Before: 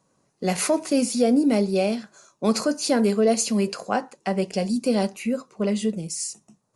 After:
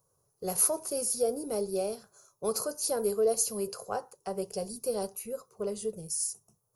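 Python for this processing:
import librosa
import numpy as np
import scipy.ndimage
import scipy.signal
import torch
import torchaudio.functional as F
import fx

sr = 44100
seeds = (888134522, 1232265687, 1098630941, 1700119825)

y = fx.curve_eq(x, sr, hz=(110.0, 260.0, 420.0, 620.0, 1300.0, 2000.0, 3700.0, 5600.0, 8100.0, 12000.0), db=(0, -25, -4, -10, -9, -23, -15, -6, -8, 14))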